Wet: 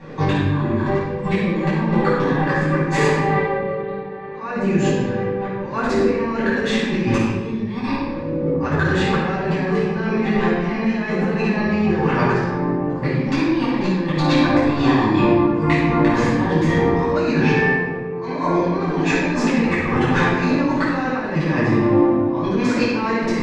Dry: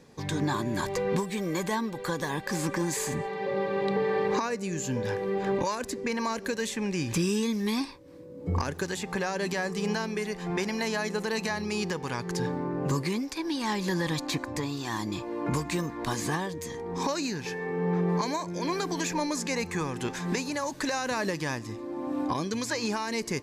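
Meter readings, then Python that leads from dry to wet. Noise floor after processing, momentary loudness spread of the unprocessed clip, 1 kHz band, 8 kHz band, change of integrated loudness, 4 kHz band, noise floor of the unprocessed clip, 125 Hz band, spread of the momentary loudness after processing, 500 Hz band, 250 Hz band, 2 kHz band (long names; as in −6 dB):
−27 dBFS, 5 LU, +10.0 dB, can't be measured, +11.0 dB, +4.5 dB, −42 dBFS, +12.5 dB, 7 LU, +10.0 dB, +12.5 dB, +11.0 dB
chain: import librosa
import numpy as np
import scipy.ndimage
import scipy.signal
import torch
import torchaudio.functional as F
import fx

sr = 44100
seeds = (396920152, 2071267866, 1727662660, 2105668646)

y = scipy.signal.sosfilt(scipy.signal.butter(2, 2300.0, 'lowpass', fs=sr, output='sos'), x)
y = fx.low_shelf(y, sr, hz=340.0, db=-3.0)
y = fx.hum_notches(y, sr, base_hz=60, count=4)
y = fx.over_compress(y, sr, threshold_db=-37.0, ratio=-0.5)
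y = fx.room_shoebox(y, sr, seeds[0], volume_m3=950.0, walls='mixed', distance_m=9.3)
y = y * librosa.db_to_amplitude(2.5)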